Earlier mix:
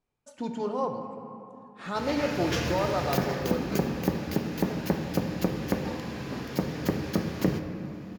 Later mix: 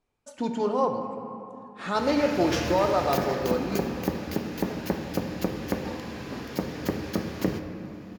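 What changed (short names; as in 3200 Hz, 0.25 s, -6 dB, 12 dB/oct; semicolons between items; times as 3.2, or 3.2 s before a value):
speech +5.0 dB; master: add bell 150 Hz -6 dB 0.49 oct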